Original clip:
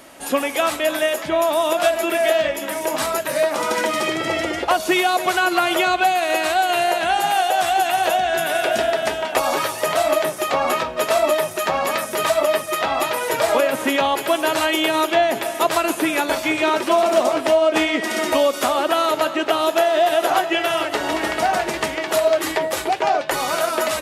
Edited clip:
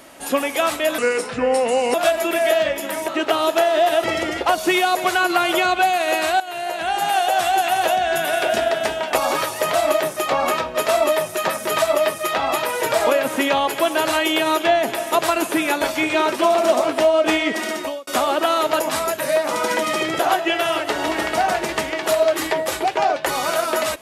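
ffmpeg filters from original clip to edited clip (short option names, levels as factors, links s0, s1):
-filter_complex "[0:a]asplit=10[s0][s1][s2][s3][s4][s5][s6][s7][s8][s9];[s0]atrim=end=0.984[s10];[s1]atrim=start=0.98:end=1.73,asetpts=PTS-STARTPTS,asetrate=34398,aresample=44100[s11];[s2]atrim=start=1.726:end=2.872[s12];[s3]atrim=start=19.278:end=20.242[s13];[s4]atrim=start=4.258:end=6.62,asetpts=PTS-STARTPTS,afade=t=out:st=2.358:d=0.004:c=hsin:silence=0.177828[s14];[s5]atrim=start=6.62:end=11.712,asetpts=PTS-STARTPTS,afade=t=in:d=0.79:silence=0.177828[s15];[s6]atrim=start=11.968:end=18.55,asetpts=PTS-STARTPTS,afade=t=out:st=6.062:d=0.52[s16];[s7]atrim=start=18.55:end=19.282,asetpts=PTS-STARTPTS,afade=t=in:d=0.004:c=hsin[s17];[s8]atrim=start=2.868:end=4.262[s18];[s9]atrim=start=20.238[s19];[s10][s11]acrossfade=d=0.004:c1=hsin:c2=hsin[s20];[s20][s12]acrossfade=d=0.004:c1=hsin:c2=hsin[s21];[s21][s13]acrossfade=d=0.004:c1=hsin:c2=hsin[s22];[s14][s15]concat=n=2:v=0:a=1[s23];[s22][s23]acrossfade=d=0.004:c1=hsin:c2=hsin[s24];[s16][s17]concat=n=2:v=0:a=1[s25];[s24][s25]acrossfade=d=0.004:c1=hsin:c2=hsin[s26];[s26][s18]acrossfade=d=0.004:c1=hsin:c2=hsin[s27];[s27][s19]acrossfade=d=0.004:c1=hsin:c2=hsin"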